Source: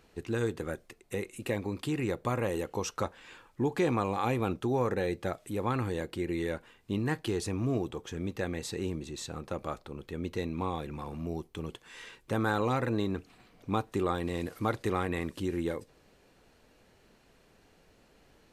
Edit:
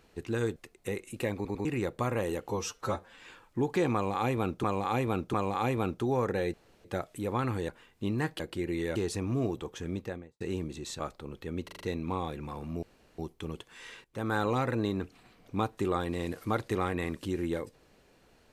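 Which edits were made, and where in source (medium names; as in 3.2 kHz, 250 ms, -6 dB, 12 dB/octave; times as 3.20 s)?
0.56–0.82 s: delete
1.61 s: stutter in place 0.10 s, 3 plays
2.75–3.22 s: stretch 1.5×
3.96–4.66 s: loop, 3 plays
5.16 s: insert room tone 0.31 s
6.00–6.56 s: move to 7.27 s
8.22–8.72 s: studio fade out
9.31–9.66 s: delete
10.31 s: stutter 0.04 s, 5 plays
11.33 s: insert room tone 0.36 s
12.19–12.53 s: fade in linear, from -14.5 dB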